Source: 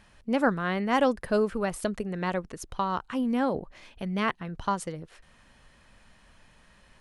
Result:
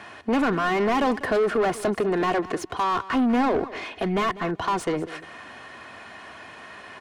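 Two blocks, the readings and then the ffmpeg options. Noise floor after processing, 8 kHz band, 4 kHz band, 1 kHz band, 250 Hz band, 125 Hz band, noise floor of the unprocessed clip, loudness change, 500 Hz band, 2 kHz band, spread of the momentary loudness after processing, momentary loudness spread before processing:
−44 dBFS, +2.5 dB, +5.5 dB, +5.5 dB, +4.0 dB, +1.5 dB, −59 dBFS, +4.5 dB, +5.0 dB, +5.0 dB, 19 LU, 11 LU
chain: -filter_complex "[0:a]highpass=frequency=78:width=0.5412,highpass=frequency=78:width=1.3066,aecho=1:1:2.8:0.48,acrossover=split=290|3000[link_01][link_02][link_03];[link_02]acompressor=threshold=-27dB:ratio=6[link_04];[link_01][link_04][link_03]amix=inputs=3:normalize=0,asplit=2[link_05][link_06];[link_06]highpass=frequency=720:poles=1,volume=28dB,asoftclip=type=tanh:threshold=-15.5dB[link_07];[link_05][link_07]amix=inputs=2:normalize=0,lowpass=frequency=1100:poles=1,volume=-6dB,asplit=2[link_08][link_09];[link_09]aecho=0:1:196|392:0.141|0.0212[link_10];[link_08][link_10]amix=inputs=2:normalize=0,volume=2dB"

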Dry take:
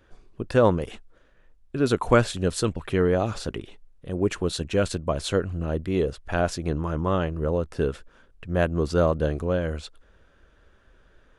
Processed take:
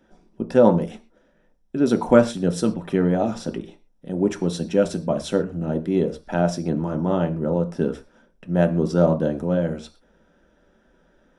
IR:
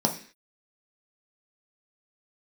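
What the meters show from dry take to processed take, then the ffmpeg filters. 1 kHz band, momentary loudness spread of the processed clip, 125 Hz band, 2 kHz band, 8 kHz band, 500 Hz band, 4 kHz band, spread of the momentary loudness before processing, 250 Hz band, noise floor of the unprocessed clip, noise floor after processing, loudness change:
+1.0 dB, 12 LU, +1.5 dB, −2.5 dB, −1.5 dB, +3.0 dB, −3.0 dB, 13 LU, +6.0 dB, −59 dBFS, −61 dBFS, +3.5 dB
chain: -filter_complex "[0:a]asplit=2[link_01][link_02];[1:a]atrim=start_sample=2205,atrim=end_sample=6174[link_03];[link_02][link_03]afir=irnorm=-1:irlink=0,volume=-8.5dB[link_04];[link_01][link_04]amix=inputs=2:normalize=0,volume=-6dB"

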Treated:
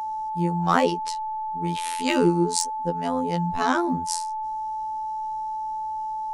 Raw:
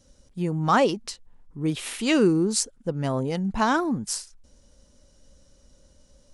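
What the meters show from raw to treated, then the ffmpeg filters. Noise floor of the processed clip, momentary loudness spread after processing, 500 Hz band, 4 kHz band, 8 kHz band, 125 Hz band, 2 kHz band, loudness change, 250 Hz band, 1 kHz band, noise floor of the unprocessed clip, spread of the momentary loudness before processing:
−30 dBFS, 9 LU, −0.5 dB, −0.5 dB, −0.5 dB, −0.5 dB, −0.5 dB, −1.0 dB, −1.0 dB, +6.0 dB, −59 dBFS, 11 LU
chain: -af "asoftclip=type=hard:threshold=-12dB,afftfilt=real='hypot(re,im)*cos(PI*b)':imag='0':win_size=2048:overlap=0.75,aeval=exprs='val(0)+0.0316*sin(2*PI*870*n/s)':channel_layout=same,volume=3dB"

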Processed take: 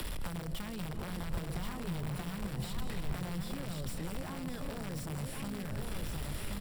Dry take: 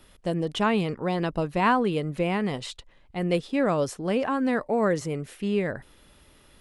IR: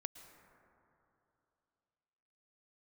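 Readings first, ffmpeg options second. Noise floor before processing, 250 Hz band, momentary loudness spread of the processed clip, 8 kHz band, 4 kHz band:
−57 dBFS, −13.0 dB, 2 LU, −2.5 dB, −8.5 dB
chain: -filter_complex "[0:a]aeval=exprs='val(0)+0.5*0.0251*sgn(val(0))':channel_layout=same,acrossover=split=120|5200[link_01][link_02][link_03];[link_02]acompressor=threshold=-37dB:ratio=6[link_04];[link_01][link_04][link_03]amix=inputs=3:normalize=0[link_05];[1:a]atrim=start_sample=2205,asetrate=31311,aresample=44100[link_06];[link_05][link_06]afir=irnorm=-1:irlink=0,aeval=exprs='(mod(31.6*val(0)+1,2)-1)/31.6':channel_layout=same,alimiter=level_in=15dB:limit=-24dB:level=0:latency=1:release=443,volume=-15dB,asplit=2[link_07][link_08];[link_08]aecho=0:1:1078:0.596[link_09];[link_07][link_09]amix=inputs=2:normalize=0,acrossover=split=160[link_10][link_11];[link_11]acompressor=threshold=-54dB:ratio=6[link_12];[link_10][link_12]amix=inputs=2:normalize=0,highshelf=frequency=5000:gain=-4,bandreject=frequency=6400:width=5.2,volume=13.5dB"

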